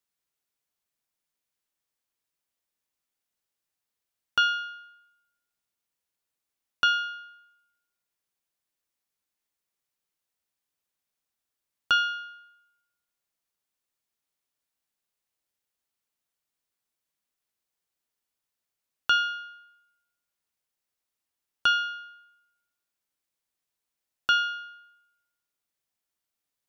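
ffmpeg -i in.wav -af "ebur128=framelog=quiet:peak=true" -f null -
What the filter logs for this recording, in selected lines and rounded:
Integrated loudness:
  I:         -26.3 LUFS
  Threshold: -38.7 LUFS
Loudness range:
  LRA:         2.8 LU
  Threshold: -53.1 LUFS
  LRA low:   -33.1 LUFS
  LRA high:  -30.3 LUFS
True peak:
  Peak:      -12.4 dBFS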